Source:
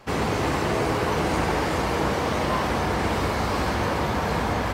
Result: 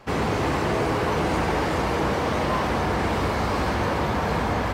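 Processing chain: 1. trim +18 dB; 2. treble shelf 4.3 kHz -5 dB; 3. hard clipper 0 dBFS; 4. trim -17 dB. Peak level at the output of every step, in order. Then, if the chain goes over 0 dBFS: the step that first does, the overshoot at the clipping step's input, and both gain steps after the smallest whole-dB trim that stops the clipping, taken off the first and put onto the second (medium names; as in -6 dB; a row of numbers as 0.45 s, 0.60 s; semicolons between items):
+7.0 dBFS, +7.0 dBFS, 0.0 dBFS, -17.0 dBFS; step 1, 7.0 dB; step 1 +11 dB, step 4 -10 dB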